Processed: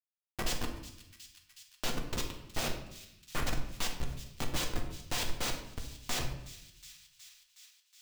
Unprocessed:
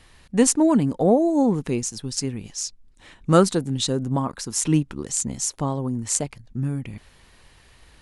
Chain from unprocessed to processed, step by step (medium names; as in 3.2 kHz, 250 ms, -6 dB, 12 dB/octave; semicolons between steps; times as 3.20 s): chunks repeated in reverse 187 ms, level -12 dB; Chebyshev high-pass 1.4 kHz, order 8; noise-vocoded speech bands 4; vibrato 6.3 Hz 60 cents; Schmitt trigger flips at -27.5 dBFS; feedback echo behind a high-pass 367 ms, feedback 65%, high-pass 2.8 kHz, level -18 dB; on a send at -2 dB: reverberation RT60 0.75 s, pre-delay 4 ms; on the sum: tape noise reduction on one side only encoder only